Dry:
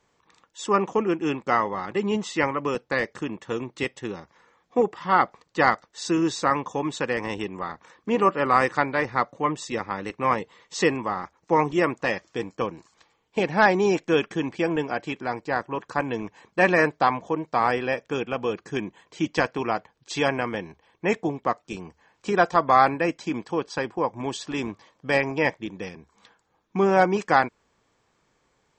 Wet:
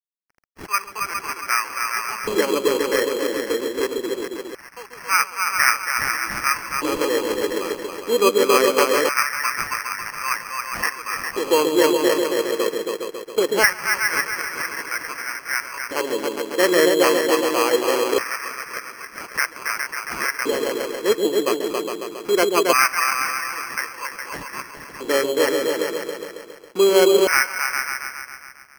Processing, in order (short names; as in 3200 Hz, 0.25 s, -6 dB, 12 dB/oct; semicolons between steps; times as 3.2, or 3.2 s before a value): bell 750 Hz -12.5 dB 0.29 oct; on a send: repeats that get brighter 0.137 s, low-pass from 400 Hz, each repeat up 2 oct, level 0 dB; on the sum: crossover distortion -48.5 dBFS; LFO high-pass square 0.22 Hz 400–1500 Hz; sample-and-hold 12×